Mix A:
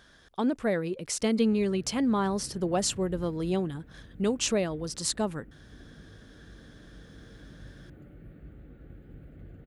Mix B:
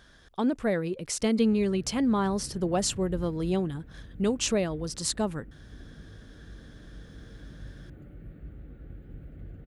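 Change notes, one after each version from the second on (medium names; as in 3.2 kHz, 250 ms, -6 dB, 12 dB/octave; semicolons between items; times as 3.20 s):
master: add bass shelf 100 Hz +7 dB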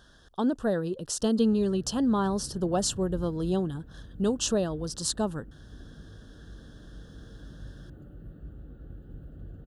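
master: add Butterworth band-stop 2.2 kHz, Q 1.9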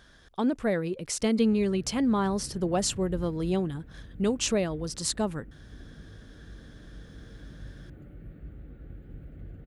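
master: remove Butterworth band-stop 2.2 kHz, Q 1.9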